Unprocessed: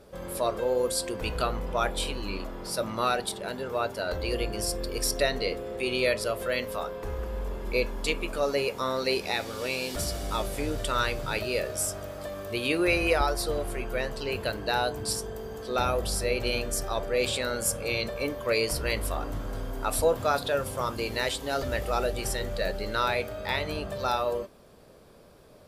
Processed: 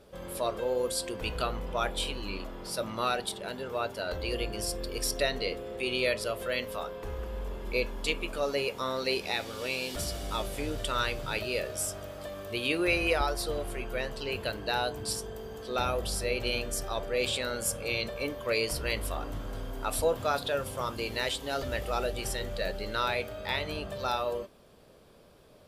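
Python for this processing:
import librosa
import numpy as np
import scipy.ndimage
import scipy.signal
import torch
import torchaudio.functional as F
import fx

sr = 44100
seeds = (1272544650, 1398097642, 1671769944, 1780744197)

y = fx.peak_eq(x, sr, hz=3100.0, db=4.5, octaves=0.61)
y = F.gain(torch.from_numpy(y), -3.5).numpy()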